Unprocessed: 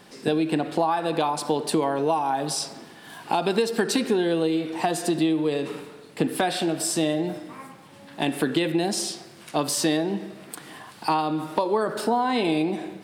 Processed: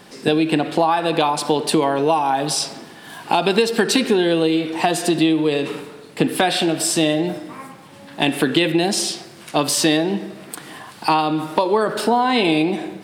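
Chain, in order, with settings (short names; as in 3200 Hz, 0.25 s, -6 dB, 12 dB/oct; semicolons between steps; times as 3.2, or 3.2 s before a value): dynamic EQ 2900 Hz, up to +5 dB, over -44 dBFS, Q 1.2; gain +5.5 dB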